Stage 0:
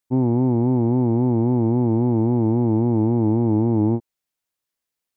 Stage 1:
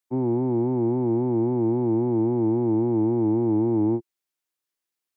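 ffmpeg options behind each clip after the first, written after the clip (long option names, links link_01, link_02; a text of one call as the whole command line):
ffmpeg -i in.wav -filter_complex "[0:a]equalizer=frequency=350:width_type=o:width=0.48:gain=9.5,acrossover=split=130|280|700[link_01][link_02][link_03][link_04];[link_04]acontrast=54[link_05];[link_01][link_02][link_03][link_05]amix=inputs=4:normalize=0,volume=-8.5dB" out.wav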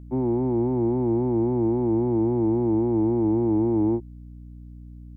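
ffmpeg -i in.wav -af "aeval=exprs='val(0)+0.01*(sin(2*PI*60*n/s)+sin(2*PI*2*60*n/s)/2+sin(2*PI*3*60*n/s)/3+sin(2*PI*4*60*n/s)/4+sin(2*PI*5*60*n/s)/5)':channel_layout=same" out.wav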